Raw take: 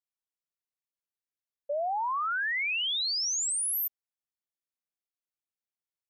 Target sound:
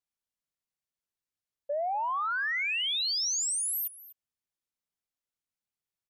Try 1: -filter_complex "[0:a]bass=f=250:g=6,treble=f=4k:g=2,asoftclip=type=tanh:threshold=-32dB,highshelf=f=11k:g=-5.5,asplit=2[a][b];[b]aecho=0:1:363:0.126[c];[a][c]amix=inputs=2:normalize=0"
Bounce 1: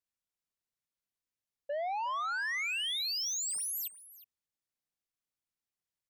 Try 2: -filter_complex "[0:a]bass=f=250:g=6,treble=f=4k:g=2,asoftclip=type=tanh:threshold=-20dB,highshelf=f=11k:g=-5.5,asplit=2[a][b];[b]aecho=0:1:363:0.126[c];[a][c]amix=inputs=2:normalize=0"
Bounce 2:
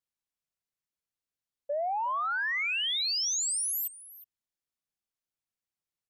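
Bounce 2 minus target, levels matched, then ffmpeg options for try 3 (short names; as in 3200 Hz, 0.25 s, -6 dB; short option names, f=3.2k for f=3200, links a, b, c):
echo 0.116 s late
-filter_complex "[0:a]bass=f=250:g=6,treble=f=4k:g=2,asoftclip=type=tanh:threshold=-20dB,highshelf=f=11k:g=-5.5,asplit=2[a][b];[b]aecho=0:1:247:0.126[c];[a][c]amix=inputs=2:normalize=0"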